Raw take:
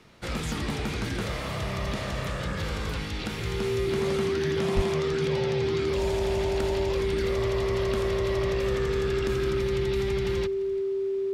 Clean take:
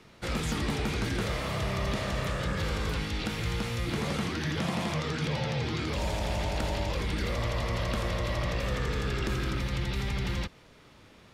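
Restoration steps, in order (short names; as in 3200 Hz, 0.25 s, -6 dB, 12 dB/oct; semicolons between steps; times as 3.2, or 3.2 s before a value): notch 390 Hz, Q 30; 4.75–4.87 HPF 140 Hz 24 dB/oct; inverse comb 0.343 s -21 dB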